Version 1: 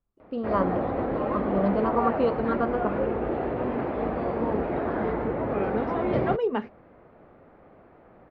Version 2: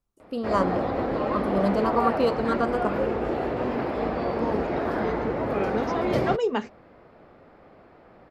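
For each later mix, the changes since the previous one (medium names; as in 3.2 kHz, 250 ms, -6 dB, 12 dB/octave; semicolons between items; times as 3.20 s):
master: remove distance through air 400 m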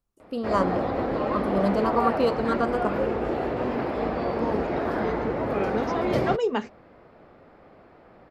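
no change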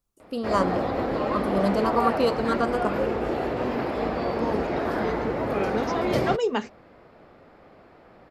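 master: add treble shelf 3.7 kHz +7.5 dB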